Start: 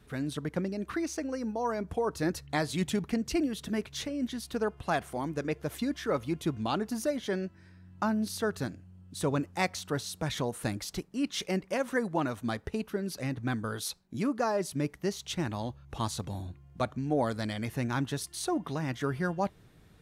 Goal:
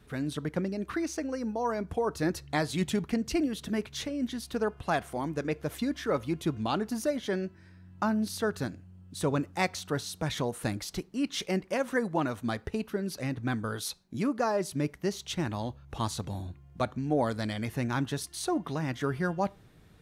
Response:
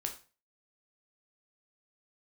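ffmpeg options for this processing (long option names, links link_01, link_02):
-filter_complex "[0:a]asplit=2[link_01][link_02];[1:a]atrim=start_sample=2205,lowpass=6200[link_03];[link_02][link_03]afir=irnorm=-1:irlink=0,volume=-17.5dB[link_04];[link_01][link_04]amix=inputs=2:normalize=0"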